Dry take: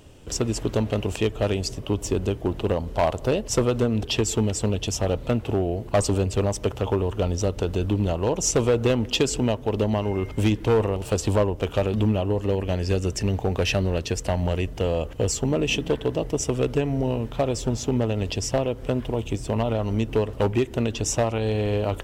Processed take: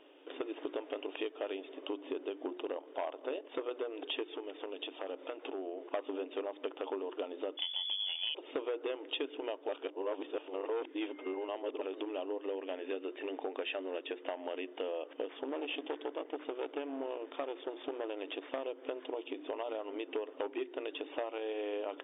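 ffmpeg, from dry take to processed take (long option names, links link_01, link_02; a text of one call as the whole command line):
ffmpeg -i in.wav -filter_complex "[0:a]asettb=1/sr,asplit=3[link_01][link_02][link_03];[link_01]atrim=end=2.504[link_04];[link_02]atrim=start=2.5:end=3.75,asetpts=PTS-STARTPTS,afade=type=in:duration=0.004:curve=qsin,afade=type=out:start_time=1.246:duration=0.004:curve=qsin,tremolo=f=42:d=0.4[link_05];[link_03]atrim=start=3.746[link_06];[link_04][link_05]acrossfade=duration=0.004:curve1=hsin:curve2=qsin[link_07];[link_07][link_06]acrossfade=duration=0.004:curve1=qsin:curve2=hsin,asettb=1/sr,asplit=3[link_08][link_09][link_10];[link_08]atrim=end=4.304[link_11];[link_09]atrim=start=4.3:end=5.92,asetpts=PTS-STARTPTS,afade=type=in:duration=0.004:curve=qsin,afade=type=out:start_time=1.616:duration=0.004:curve=qsin,acompressor=threshold=-26dB:ratio=4:attack=3.2:release=140:knee=1:detection=peak[link_12];[link_10]atrim=start=5.916[link_13];[link_11][link_12]acrossfade=duration=0.004:curve1=hsin:curve2=qsin[link_14];[link_14][link_13]acrossfade=duration=0.004:curve1=qsin:curve2=hsin,asettb=1/sr,asplit=3[link_15][link_16][link_17];[link_15]atrim=end=7.574[link_18];[link_16]atrim=start=7.57:end=8.35,asetpts=PTS-STARTPTS,afade=type=in:duration=0.004:curve=qsin,afade=type=out:start_time=0.776:duration=0.004:curve=qsin,lowpass=frequency=3000:width_type=q:width=0.5098,lowpass=frequency=3000:width_type=q:width=0.6013,lowpass=frequency=3000:width_type=q:width=0.9,lowpass=frequency=3000:width_type=q:width=2.563,afreqshift=-3500[link_19];[link_17]atrim=start=8.346[link_20];[link_18][link_19]acrossfade=duration=0.004:curve1=hsin:curve2=qsin[link_21];[link_21][link_20]acrossfade=duration=0.004:curve1=qsin:curve2=hsin,asettb=1/sr,asplit=3[link_22][link_23][link_24];[link_22]atrim=end=15.284[link_25];[link_23]atrim=start=15.28:end=18.64,asetpts=PTS-STARTPTS,afade=type=in:duration=0.004:curve=qsin,afade=type=out:start_time=3.356:duration=0.004:curve=qsin,aeval=exprs='clip(val(0),-1,0.0211)':channel_layout=same[link_26];[link_24]atrim=start=18.636[link_27];[link_25][link_26]acrossfade=duration=0.004:curve1=hsin:curve2=qsin[link_28];[link_28][link_27]acrossfade=duration=0.004:curve1=qsin:curve2=hsin,asplit=3[link_29][link_30][link_31];[link_29]atrim=end=9.692[link_32];[link_30]atrim=start=9.688:end=11.812,asetpts=PTS-STARTPTS,areverse[link_33];[link_31]atrim=start=11.808[link_34];[link_32][link_33]acrossfade=duration=0.004:curve1=hsin:curve2=hsin[link_35];[link_35][link_34]acrossfade=duration=0.004:curve1=hsin:curve2=hsin,afftfilt=real='re*between(b*sr/4096,260,3700)':imag='im*between(b*sr/4096,260,3700)':win_size=4096:overlap=0.75,bandreject=frequency=60:width_type=h:width=6,bandreject=frequency=120:width_type=h:width=6,bandreject=frequency=180:width_type=h:width=6,bandreject=frequency=240:width_type=h:width=6,bandreject=frequency=300:width_type=h:width=6,bandreject=frequency=360:width_type=h:width=6,acompressor=threshold=-31dB:ratio=3,volume=-5.5dB" out.wav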